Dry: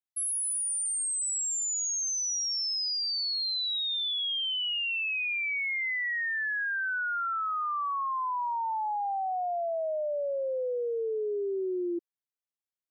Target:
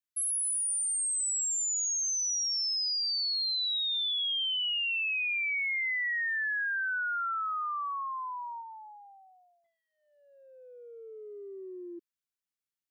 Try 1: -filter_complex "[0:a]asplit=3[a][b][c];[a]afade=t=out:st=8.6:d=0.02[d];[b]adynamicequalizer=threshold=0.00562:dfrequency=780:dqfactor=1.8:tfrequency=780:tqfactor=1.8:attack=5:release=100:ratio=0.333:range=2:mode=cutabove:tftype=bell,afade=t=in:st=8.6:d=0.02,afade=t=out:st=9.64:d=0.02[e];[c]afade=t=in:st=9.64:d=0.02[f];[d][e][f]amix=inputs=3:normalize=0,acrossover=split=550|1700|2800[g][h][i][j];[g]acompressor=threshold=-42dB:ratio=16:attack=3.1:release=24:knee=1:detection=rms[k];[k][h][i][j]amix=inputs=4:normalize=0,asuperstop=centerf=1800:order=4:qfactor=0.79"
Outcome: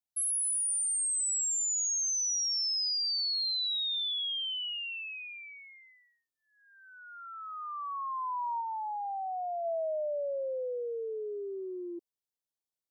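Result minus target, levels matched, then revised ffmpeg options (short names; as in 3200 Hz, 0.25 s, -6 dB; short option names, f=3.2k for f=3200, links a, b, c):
500 Hz band +15.0 dB
-filter_complex "[0:a]asplit=3[a][b][c];[a]afade=t=out:st=8.6:d=0.02[d];[b]adynamicequalizer=threshold=0.00562:dfrequency=780:dqfactor=1.8:tfrequency=780:tqfactor=1.8:attack=5:release=100:ratio=0.333:range=2:mode=cutabove:tftype=bell,afade=t=in:st=8.6:d=0.02,afade=t=out:st=9.64:d=0.02[e];[c]afade=t=in:st=9.64:d=0.02[f];[d][e][f]amix=inputs=3:normalize=0,acrossover=split=550|1700|2800[g][h][i][j];[g]acompressor=threshold=-42dB:ratio=16:attack=3.1:release=24:knee=1:detection=rms[k];[k][h][i][j]amix=inputs=4:normalize=0,asuperstop=centerf=640:order=4:qfactor=0.79"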